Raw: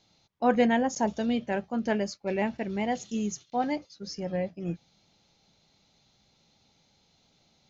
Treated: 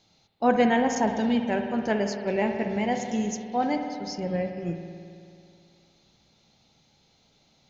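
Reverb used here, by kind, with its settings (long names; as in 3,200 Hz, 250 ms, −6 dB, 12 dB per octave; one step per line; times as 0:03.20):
spring reverb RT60 2.4 s, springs 54 ms, chirp 25 ms, DRR 5 dB
level +2 dB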